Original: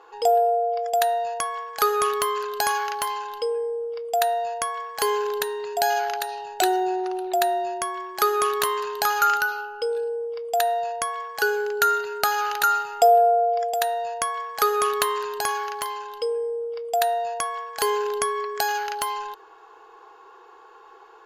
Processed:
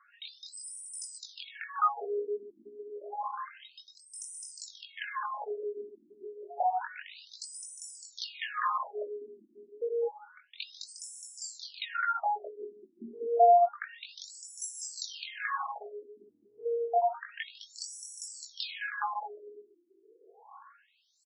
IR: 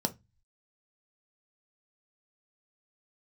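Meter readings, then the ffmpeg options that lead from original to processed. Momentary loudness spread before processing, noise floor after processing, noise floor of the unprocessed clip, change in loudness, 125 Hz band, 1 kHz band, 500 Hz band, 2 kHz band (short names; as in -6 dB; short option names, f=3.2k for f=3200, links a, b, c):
9 LU, -67 dBFS, -49 dBFS, -10.0 dB, n/a, -10.0 dB, -10.5 dB, -12.0 dB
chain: -filter_complex "[0:a]bandreject=f=60:t=h:w=6,bandreject=f=120:t=h:w=6,bandreject=f=180:t=h:w=6,bandreject=f=240:t=h:w=6,bandreject=f=300:t=h:w=6,bandreject=f=360:t=h:w=6,bandreject=f=420:t=h:w=6,bandreject=f=480:t=h:w=6,acrusher=samples=5:mix=1:aa=0.000001,aeval=exprs='0.299*(abs(mod(val(0)/0.299+3,4)-2)-1)':c=same,flanger=delay=17.5:depth=5.4:speed=1.1,asplit=2[a][b];[b]aecho=0:1:210|357|459.9|531.9|582.4:0.631|0.398|0.251|0.158|0.1[c];[a][c]amix=inputs=2:normalize=0,afftfilt=real='re*between(b*sr/1024,270*pow(7600/270,0.5+0.5*sin(2*PI*0.29*pts/sr))/1.41,270*pow(7600/270,0.5+0.5*sin(2*PI*0.29*pts/sr))*1.41)':imag='im*between(b*sr/1024,270*pow(7600/270,0.5+0.5*sin(2*PI*0.29*pts/sr))/1.41,270*pow(7600/270,0.5+0.5*sin(2*PI*0.29*pts/sr))*1.41)':win_size=1024:overlap=0.75,volume=-1.5dB"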